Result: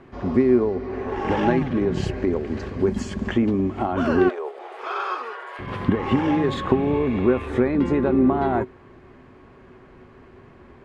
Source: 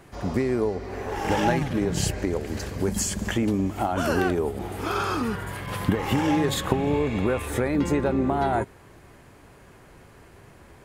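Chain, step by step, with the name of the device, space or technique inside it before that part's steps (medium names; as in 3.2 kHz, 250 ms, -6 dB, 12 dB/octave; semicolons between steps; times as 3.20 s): 4.29–5.59 s: steep high-pass 480 Hz 36 dB/octave; inside a cardboard box (low-pass 3 kHz 12 dB/octave; small resonant body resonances 250/370/1100 Hz, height 10 dB, ringing for 85 ms)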